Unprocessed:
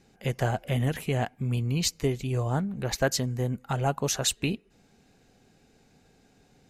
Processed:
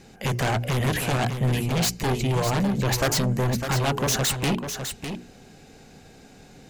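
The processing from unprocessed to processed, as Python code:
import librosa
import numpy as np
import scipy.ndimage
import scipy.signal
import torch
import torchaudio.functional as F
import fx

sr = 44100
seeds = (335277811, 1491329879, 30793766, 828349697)

p1 = fx.hum_notches(x, sr, base_hz=60, count=7)
p2 = fx.fold_sine(p1, sr, drive_db=18, ceiling_db=-11.5)
p3 = p1 + (p2 * librosa.db_to_amplitude(-11.0))
p4 = p3 + 10.0 ** (-8.0 / 20.0) * np.pad(p3, (int(603 * sr / 1000.0), 0))[:len(p3)]
y = p4 * librosa.db_to_amplitude(-1.0)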